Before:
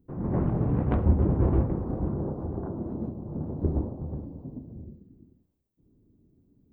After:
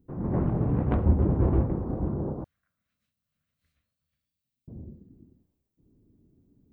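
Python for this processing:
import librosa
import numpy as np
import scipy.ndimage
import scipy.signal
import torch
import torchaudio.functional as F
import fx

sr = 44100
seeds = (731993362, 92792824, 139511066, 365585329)

y = fx.cheby2_highpass(x, sr, hz=950.0, order=4, stop_db=50, at=(2.44, 4.68))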